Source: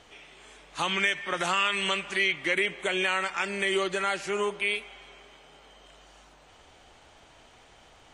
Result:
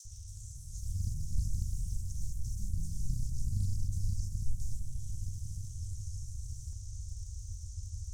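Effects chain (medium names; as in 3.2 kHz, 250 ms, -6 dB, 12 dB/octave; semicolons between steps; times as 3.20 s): cycle switcher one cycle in 2, inverted; overdrive pedal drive 29 dB, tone 4.7 kHz, clips at -12 dBFS; Chebyshev band-stop 100–5900 Hz, order 5; compression 6:1, threshold -54 dBFS, peak gain reduction 23 dB; crackle 210 per s -76 dBFS; RIAA curve playback; phase dispersion lows, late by 49 ms, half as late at 930 Hz; on a send: feedback echo behind a low-pass 153 ms, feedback 75%, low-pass 1.4 kHz, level -6 dB; on the sum: ever faster or slower copies 276 ms, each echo +4 st, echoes 3, each echo -6 dB; loudspeaker Doppler distortion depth 0.73 ms; trim +12.5 dB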